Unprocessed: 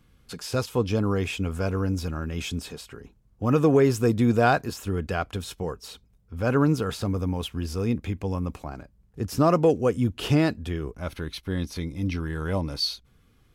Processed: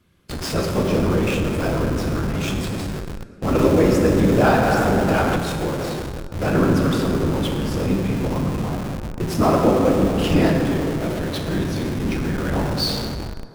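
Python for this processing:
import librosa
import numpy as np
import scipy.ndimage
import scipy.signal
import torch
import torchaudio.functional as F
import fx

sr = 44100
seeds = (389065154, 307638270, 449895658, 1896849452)

p1 = scipy.signal.sosfilt(scipy.signal.butter(4, 83.0, 'highpass', fs=sr, output='sos'), x)
p2 = fx.whisperise(p1, sr, seeds[0])
p3 = p2 + fx.echo_stepped(p2, sr, ms=167, hz=170.0, octaves=0.7, feedback_pct=70, wet_db=-10.0, dry=0)
p4 = fx.rev_plate(p3, sr, seeds[1], rt60_s=2.6, hf_ratio=0.5, predelay_ms=0, drr_db=-0.5)
p5 = fx.schmitt(p4, sr, flips_db=-33.0)
p6 = p4 + (p5 * librosa.db_to_amplitude(-7.0))
y = fx.band_squash(p6, sr, depth_pct=70, at=(3.59, 5.37))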